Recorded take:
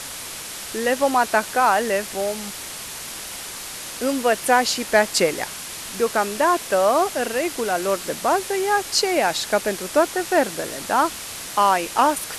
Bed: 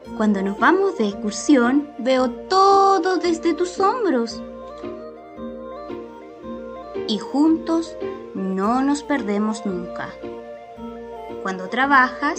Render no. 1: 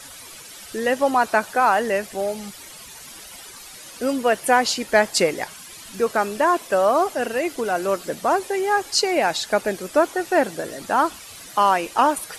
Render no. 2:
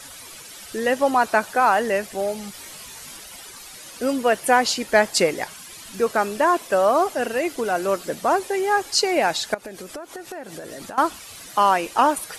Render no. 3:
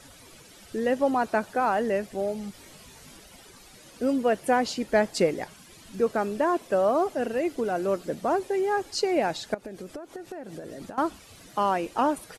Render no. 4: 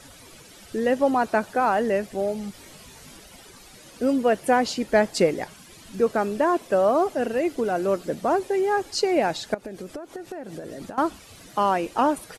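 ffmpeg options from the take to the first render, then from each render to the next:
-af "afftdn=nr=12:nf=-34"
-filter_complex "[0:a]asettb=1/sr,asplit=3[a][b][c];[a]atrim=end=2.524[d];[b]atrim=start=2.52:end=3.17,asetpts=PTS-STARTPTS,afade=t=in:d=0.004:c=qsin,afade=t=out:st=0.646:d=0.004:c=qsin,asplit=2[e][f];[f]adelay=20,volume=-4dB[g];[e][g]amix=inputs=2:normalize=0,atrim=end_sample=28665[h];[c]atrim=start=3.166[i];[d][h]acrossfade=d=0.004:c1=hsin:c2=qsin[j];[j][i]acrossfade=d=0.004:c1=qsin:c2=hsin,asettb=1/sr,asplit=3[k][l][m];[k]atrim=end=9.544[n];[l]atrim=start=9.54:end=10.98,asetpts=PTS-STARTPTS,afade=t=in:d=0.004:c=qsin,afade=t=out:st=1.436:d=0.004:c=qsin,acompressor=threshold=-31dB:ratio=12:attack=3.2:release=140:knee=1:detection=peak[o];[m]atrim=start=10.976[p];[n][o]acrossfade=d=0.004:c1=hsin:c2=qsin[q];[q][p]acrossfade=d=0.004:c1=qsin:c2=hsin"
-af "firequalizer=gain_entry='entry(200,0);entry(1000,-9);entry(11000,-14)':delay=0.05:min_phase=1"
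-af "volume=3dB"

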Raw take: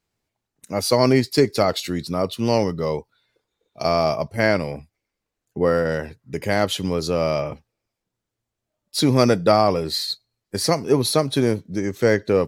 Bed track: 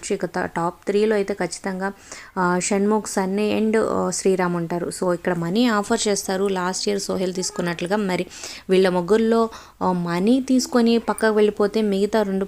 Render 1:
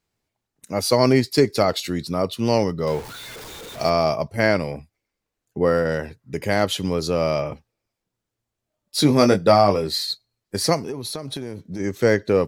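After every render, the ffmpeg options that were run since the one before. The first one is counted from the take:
-filter_complex "[0:a]asettb=1/sr,asplit=3[a][b][c];[a]atrim=end=2.874[d];[b]atrim=start=2.87:end=3.9,asetpts=PTS-STARTPTS,afade=t=in:d=0.004:c=qsin,afade=t=out:st=1.026:d=0.004:c=qsin,aeval=exprs='val(0)+0.5*0.0266*sgn(val(0))':c=same[e];[c]atrim=start=3.896[f];[d][e]acrossfade=d=0.004:c1=hsin:c2=qsin[g];[g][f]acrossfade=d=0.004:c1=qsin:c2=hsin,asettb=1/sr,asplit=3[h][i][j];[h]atrim=end=8.974[k];[i]atrim=start=8.97:end=9.87,asetpts=PTS-STARTPTS,afade=t=in:d=0.004:c=qsin,afade=t=out:st=0.896:d=0.004:c=qsin,asplit=2[l][m];[m]adelay=20,volume=-6.5dB[n];[l][n]amix=inputs=2:normalize=0,atrim=end_sample=39690[o];[j]atrim=start=9.866[p];[k][o]acrossfade=d=0.004:c1=hsin:c2=qsin[q];[q][p]acrossfade=d=0.004:c1=qsin:c2=hsin,asplit=3[r][s][t];[r]afade=t=out:st=10.81:d=0.02[u];[s]acompressor=threshold=-26dB:ratio=12:attack=3.2:release=140:knee=1:detection=peak,afade=t=in:st=10.81:d=0.02,afade=t=out:st=11.79:d=0.02[v];[t]afade=t=in:st=11.79:d=0.02[w];[u][v][w]amix=inputs=3:normalize=0"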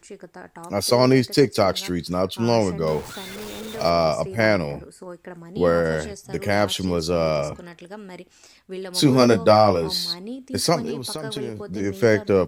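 -filter_complex "[1:a]volume=-16.5dB[a];[0:a][a]amix=inputs=2:normalize=0"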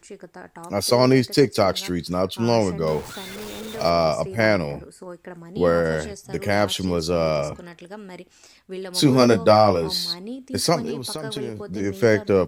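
-af anull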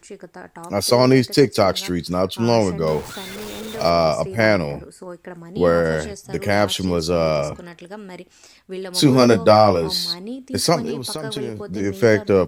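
-af "volume=2.5dB,alimiter=limit=-1dB:level=0:latency=1"

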